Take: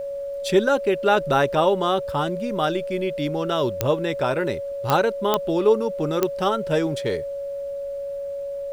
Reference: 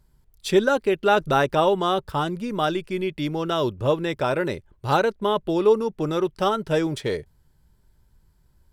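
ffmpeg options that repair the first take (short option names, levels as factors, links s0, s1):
-af "adeclick=t=4,bandreject=f=560:w=30,agate=range=0.0891:threshold=0.0794"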